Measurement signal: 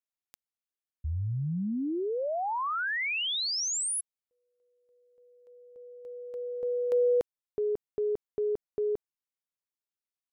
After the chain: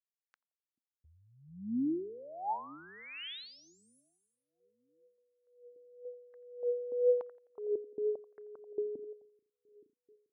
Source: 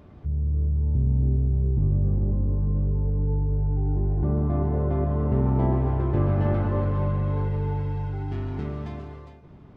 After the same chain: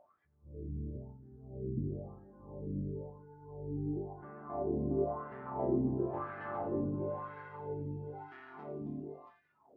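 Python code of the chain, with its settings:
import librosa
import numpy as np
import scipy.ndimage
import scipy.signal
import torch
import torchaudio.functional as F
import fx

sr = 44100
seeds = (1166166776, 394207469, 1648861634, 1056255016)

y = fx.echo_split(x, sr, split_hz=330.0, low_ms=435, high_ms=86, feedback_pct=52, wet_db=-12.0)
y = fx.wah_lfo(y, sr, hz=0.98, low_hz=260.0, high_hz=1700.0, q=3.0)
y = fx.noise_reduce_blind(y, sr, reduce_db=14)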